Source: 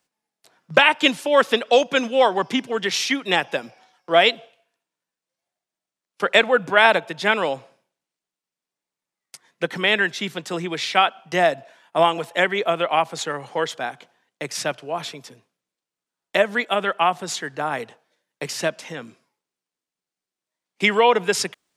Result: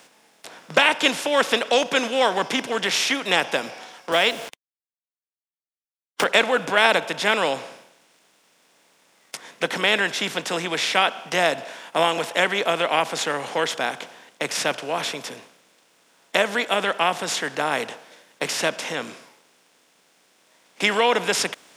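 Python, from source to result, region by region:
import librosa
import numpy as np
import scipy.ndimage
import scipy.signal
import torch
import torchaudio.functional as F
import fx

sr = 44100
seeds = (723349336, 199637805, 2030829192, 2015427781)

y = fx.chain(x, sr, fx.quant_dither(seeds[0], bits=8, dither='none'),
    fx.band_squash(depth_pct=70), at=(4.12, 6.24))
y = fx.bin_compress(y, sr, power=0.6)
y = fx.high_shelf(y, sr, hz=3400.0, db=6.5)
y = y * 10.0 ** (-6.5 / 20.0)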